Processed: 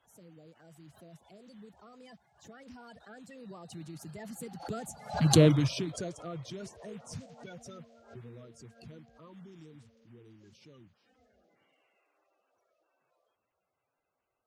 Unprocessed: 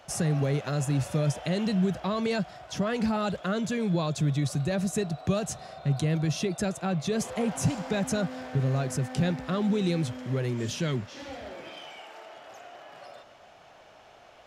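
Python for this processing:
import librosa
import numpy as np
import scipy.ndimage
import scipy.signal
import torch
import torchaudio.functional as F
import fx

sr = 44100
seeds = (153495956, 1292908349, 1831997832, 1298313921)

y = fx.spec_quant(x, sr, step_db=30)
y = fx.doppler_pass(y, sr, speed_mps=38, closest_m=3.3, pass_at_s=5.41)
y = fx.pre_swell(y, sr, db_per_s=140.0)
y = F.gain(torch.from_numpy(y), 8.0).numpy()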